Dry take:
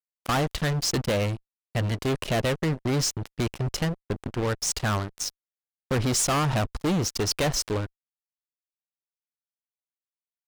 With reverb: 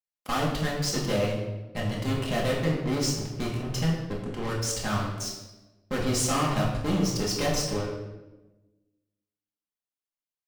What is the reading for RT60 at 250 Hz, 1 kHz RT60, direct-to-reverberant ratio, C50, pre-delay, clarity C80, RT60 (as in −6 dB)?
1.5 s, 0.95 s, −4.5 dB, 3.5 dB, 4 ms, 5.5 dB, 1.1 s